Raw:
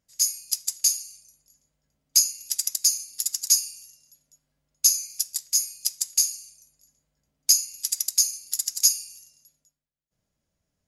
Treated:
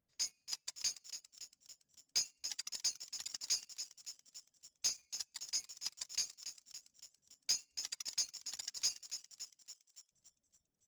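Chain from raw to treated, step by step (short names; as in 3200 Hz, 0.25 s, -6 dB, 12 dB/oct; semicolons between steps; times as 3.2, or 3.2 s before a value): tape spacing loss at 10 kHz 33 dB; notches 50/100/150 Hz; reverb removal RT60 2 s; on a send: frequency-shifting echo 0.282 s, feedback 65%, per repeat +140 Hz, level -11 dB; on the sum: sample leveller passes 2; gain -2 dB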